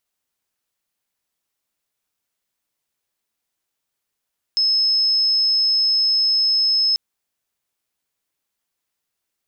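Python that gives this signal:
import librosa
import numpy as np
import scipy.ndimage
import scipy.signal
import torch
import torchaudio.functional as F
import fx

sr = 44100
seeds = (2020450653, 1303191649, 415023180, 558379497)

y = 10.0 ** (-14.5 / 20.0) * np.sin(2.0 * np.pi * (5190.0 * (np.arange(round(2.39 * sr)) / sr)))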